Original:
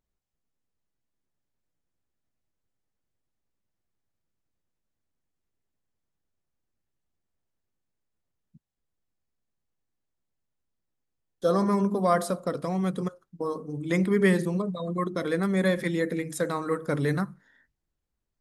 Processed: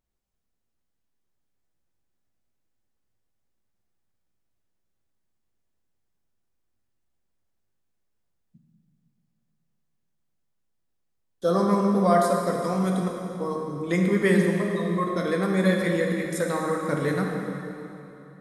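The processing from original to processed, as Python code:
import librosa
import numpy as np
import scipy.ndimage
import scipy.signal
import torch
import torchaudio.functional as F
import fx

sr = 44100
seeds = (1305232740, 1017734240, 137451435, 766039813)

y = fx.high_shelf(x, sr, hz=5400.0, db=8.0, at=(12.64, 13.06))
y = fx.rev_plate(y, sr, seeds[0], rt60_s=3.1, hf_ratio=0.8, predelay_ms=0, drr_db=0.0)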